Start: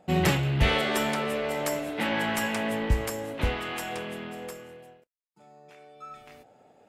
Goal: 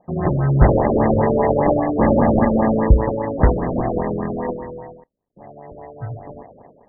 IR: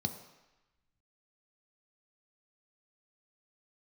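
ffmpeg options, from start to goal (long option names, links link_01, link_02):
-af "acrusher=samples=31:mix=1:aa=0.000001,dynaudnorm=framelen=100:gausssize=7:maxgain=15dB,afftfilt=real='re*lt(b*sr/1024,590*pow(2100/590,0.5+0.5*sin(2*PI*5*pts/sr)))':imag='im*lt(b*sr/1024,590*pow(2100/590,0.5+0.5*sin(2*PI*5*pts/sr)))':win_size=1024:overlap=0.75"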